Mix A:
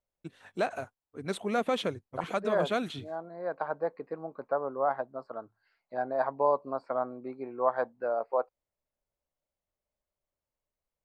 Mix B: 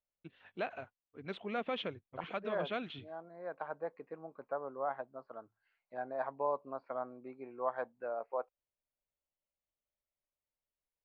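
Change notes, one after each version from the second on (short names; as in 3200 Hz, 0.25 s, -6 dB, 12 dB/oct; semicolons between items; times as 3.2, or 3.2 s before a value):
master: add ladder low-pass 3500 Hz, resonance 45%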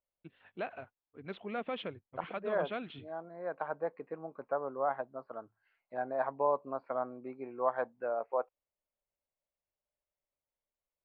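second voice +5.0 dB; master: add air absorption 160 m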